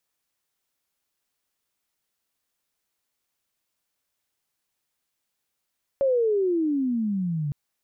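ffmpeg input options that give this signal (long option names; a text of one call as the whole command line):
ffmpeg -f lavfi -i "aevalsrc='pow(10,(-18-6.5*t/1.51)/20)*sin(2*PI*560*1.51/(-24*log(2)/12)*(exp(-24*log(2)/12*t/1.51)-1))':duration=1.51:sample_rate=44100" out.wav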